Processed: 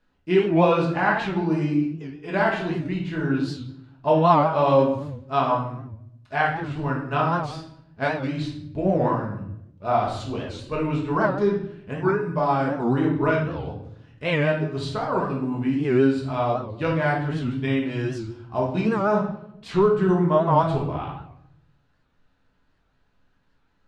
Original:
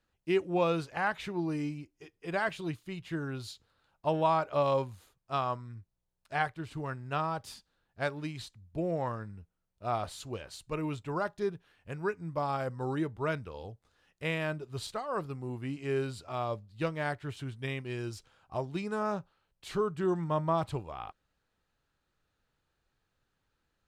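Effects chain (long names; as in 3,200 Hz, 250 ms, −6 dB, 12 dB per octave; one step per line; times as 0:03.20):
high-frequency loss of the air 92 metres
hollow resonant body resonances 270/1,000/1,500 Hz, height 6 dB
convolution reverb RT60 0.75 s, pre-delay 5 ms, DRR −3.5 dB
wow of a warped record 78 rpm, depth 160 cents
level +4.5 dB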